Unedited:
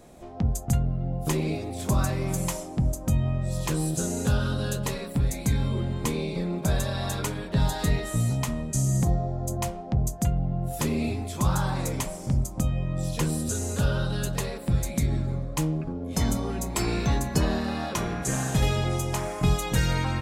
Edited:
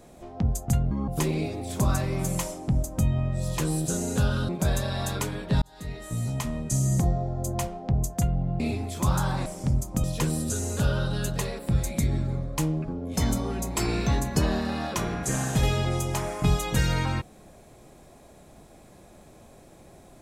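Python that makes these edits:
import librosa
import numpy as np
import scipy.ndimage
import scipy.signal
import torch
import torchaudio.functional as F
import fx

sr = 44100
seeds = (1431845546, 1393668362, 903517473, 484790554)

y = fx.edit(x, sr, fx.speed_span(start_s=0.91, length_s=0.26, speed=1.55),
    fx.cut(start_s=4.58, length_s=1.94),
    fx.fade_in_span(start_s=7.65, length_s=0.99),
    fx.cut(start_s=10.63, length_s=0.35),
    fx.cut(start_s=11.84, length_s=0.25),
    fx.cut(start_s=12.67, length_s=0.36), tone=tone)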